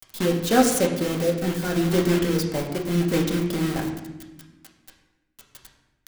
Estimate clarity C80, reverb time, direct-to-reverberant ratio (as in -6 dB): 8.0 dB, 1.1 s, -0.5 dB